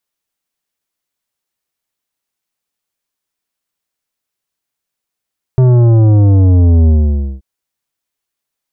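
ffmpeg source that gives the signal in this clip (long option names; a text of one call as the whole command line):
ffmpeg -f lavfi -i "aevalsrc='0.501*clip((1.83-t)/0.53,0,1)*tanh(3.55*sin(2*PI*130*1.83/log(65/130)*(exp(log(65/130)*t/1.83)-1)))/tanh(3.55)':duration=1.83:sample_rate=44100" out.wav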